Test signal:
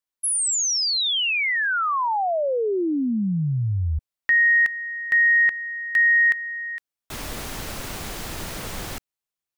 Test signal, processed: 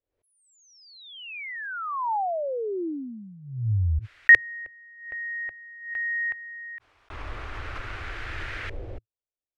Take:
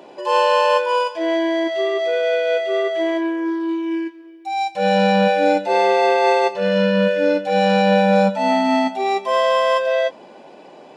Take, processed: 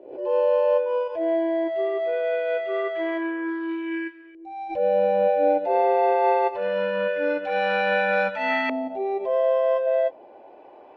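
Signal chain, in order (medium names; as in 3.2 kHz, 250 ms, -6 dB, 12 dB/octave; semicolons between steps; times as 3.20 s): LFO low-pass saw up 0.23 Hz 500–1700 Hz; FFT filter 110 Hz 0 dB, 160 Hz -24 dB, 330 Hz -7 dB, 980 Hz -11 dB, 2.4 kHz +6 dB; swell ahead of each attack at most 88 dB/s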